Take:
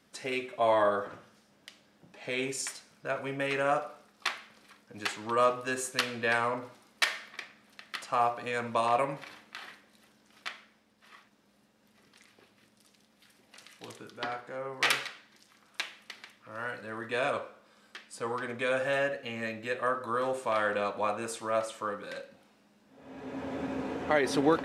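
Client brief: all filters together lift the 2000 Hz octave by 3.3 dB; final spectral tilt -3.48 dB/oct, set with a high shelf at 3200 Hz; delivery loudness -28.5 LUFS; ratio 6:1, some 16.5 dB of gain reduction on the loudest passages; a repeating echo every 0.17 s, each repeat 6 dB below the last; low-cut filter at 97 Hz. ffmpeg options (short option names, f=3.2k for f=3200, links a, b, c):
-af "highpass=97,equalizer=f=2k:t=o:g=6,highshelf=f=3.2k:g=-6,acompressor=threshold=-38dB:ratio=6,aecho=1:1:170|340|510|680|850|1020:0.501|0.251|0.125|0.0626|0.0313|0.0157,volume=13dB"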